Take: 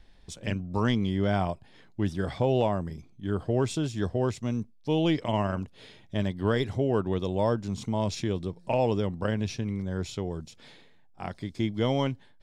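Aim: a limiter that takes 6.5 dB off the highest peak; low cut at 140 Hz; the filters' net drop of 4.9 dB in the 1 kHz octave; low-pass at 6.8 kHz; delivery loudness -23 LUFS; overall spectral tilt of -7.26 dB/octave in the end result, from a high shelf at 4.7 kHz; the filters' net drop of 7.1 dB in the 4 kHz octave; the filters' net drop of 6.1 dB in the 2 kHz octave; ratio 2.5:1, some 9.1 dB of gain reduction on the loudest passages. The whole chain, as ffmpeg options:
-af "highpass=140,lowpass=6800,equalizer=f=1000:t=o:g=-5.5,equalizer=f=2000:t=o:g=-4,equalizer=f=4000:t=o:g=-5.5,highshelf=f=4700:g=-4,acompressor=threshold=0.0158:ratio=2.5,volume=7.5,alimiter=limit=0.282:level=0:latency=1"

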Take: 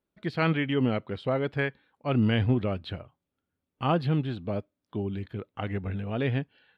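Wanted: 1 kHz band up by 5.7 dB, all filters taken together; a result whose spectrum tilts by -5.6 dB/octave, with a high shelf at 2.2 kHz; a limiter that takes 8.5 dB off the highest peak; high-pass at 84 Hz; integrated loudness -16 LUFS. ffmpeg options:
-af "highpass=84,equalizer=f=1000:t=o:g=7,highshelf=f=2200:g=3.5,volume=5.01,alimiter=limit=0.794:level=0:latency=1"

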